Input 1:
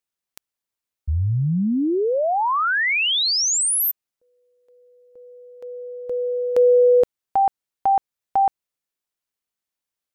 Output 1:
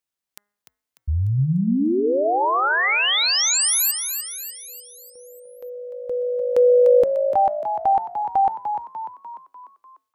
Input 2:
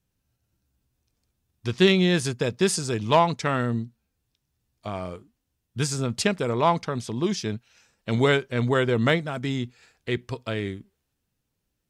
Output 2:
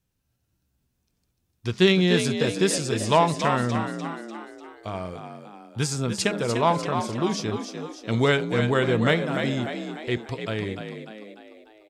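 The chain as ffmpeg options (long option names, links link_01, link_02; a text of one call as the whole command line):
ffmpeg -i in.wav -filter_complex "[0:a]bandreject=frequency=205.4:width_type=h:width=4,bandreject=frequency=410.8:width_type=h:width=4,bandreject=frequency=616.2:width_type=h:width=4,bandreject=frequency=821.6:width_type=h:width=4,bandreject=frequency=1027:width_type=h:width=4,bandreject=frequency=1232.4:width_type=h:width=4,bandreject=frequency=1437.8:width_type=h:width=4,bandreject=frequency=1643.2:width_type=h:width=4,bandreject=frequency=1848.6:width_type=h:width=4,bandreject=frequency=2054:width_type=h:width=4,asplit=7[link_01][link_02][link_03][link_04][link_05][link_06][link_07];[link_02]adelay=297,afreqshift=53,volume=-7.5dB[link_08];[link_03]adelay=594,afreqshift=106,volume=-13.3dB[link_09];[link_04]adelay=891,afreqshift=159,volume=-19.2dB[link_10];[link_05]adelay=1188,afreqshift=212,volume=-25dB[link_11];[link_06]adelay=1485,afreqshift=265,volume=-30.9dB[link_12];[link_07]adelay=1782,afreqshift=318,volume=-36.7dB[link_13];[link_01][link_08][link_09][link_10][link_11][link_12][link_13]amix=inputs=7:normalize=0" out.wav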